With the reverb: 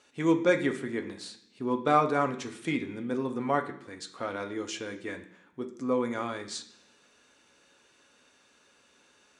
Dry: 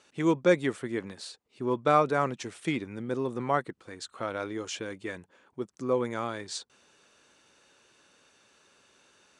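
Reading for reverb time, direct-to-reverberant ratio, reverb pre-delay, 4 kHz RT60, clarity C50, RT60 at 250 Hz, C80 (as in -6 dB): 0.70 s, 4.0 dB, 3 ms, 0.85 s, 12.0 dB, 0.95 s, 15.0 dB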